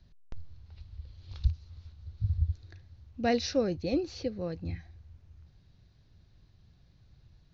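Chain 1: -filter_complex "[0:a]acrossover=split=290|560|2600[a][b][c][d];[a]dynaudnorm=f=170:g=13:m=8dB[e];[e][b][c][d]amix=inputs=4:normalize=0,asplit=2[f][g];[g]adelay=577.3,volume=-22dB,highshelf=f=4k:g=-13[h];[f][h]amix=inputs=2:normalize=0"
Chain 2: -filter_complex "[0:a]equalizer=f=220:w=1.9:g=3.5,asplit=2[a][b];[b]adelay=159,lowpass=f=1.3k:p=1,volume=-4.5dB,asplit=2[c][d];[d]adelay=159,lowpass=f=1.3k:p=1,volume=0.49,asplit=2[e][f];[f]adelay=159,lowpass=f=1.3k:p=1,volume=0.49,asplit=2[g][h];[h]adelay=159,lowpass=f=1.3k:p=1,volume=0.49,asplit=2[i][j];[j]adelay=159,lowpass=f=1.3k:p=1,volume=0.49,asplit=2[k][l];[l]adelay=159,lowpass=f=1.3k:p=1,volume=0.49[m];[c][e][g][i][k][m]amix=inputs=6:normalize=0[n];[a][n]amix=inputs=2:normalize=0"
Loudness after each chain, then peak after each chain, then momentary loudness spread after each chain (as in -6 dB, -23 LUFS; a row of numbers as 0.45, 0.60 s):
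-28.0, -31.0 LUFS; -8.0, -14.0 dBFS; 20, 21 LU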